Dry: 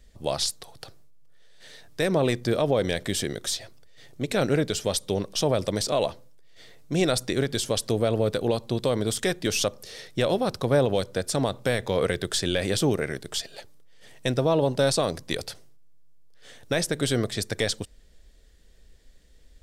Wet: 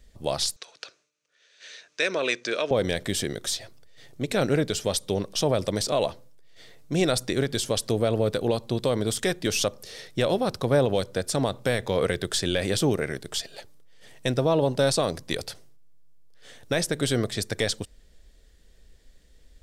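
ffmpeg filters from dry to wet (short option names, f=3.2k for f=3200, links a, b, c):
-filter_complex "[0:a]asettb=1/sr,asplit=3[a][b][c];[a]atrim=end=0.564[d];[b]atrim=start=0.56:end=2.71,asetpts=PTS-STARTPTS,afade=t=in:d=0.004:c=qsin,afade=t=out:st=2.146:d=0.004:c=qsin,highpass=460,equalizer=f=790:t=q:w=4:g=-10,equalizer=f=1.5k:t=q:w=4:g=6,equalizer=f=2.5k:t=q:w=4:g=10,equalizer=f=3.9k:t=q:w=4:g=3,equalizer=f=6.2k:t=q:w=4:g=8,lowpass=f=7.6k:w=0.5412,lowpass=f=7.6k:w=1.3066[e];[c]atrim=start=2.706[f];[d][e]acrossfade=d=0.004:c1=hsin:c2=qsin[g];[g][f]acrossfade=d=0.004:c1=qsin:c2=hsin"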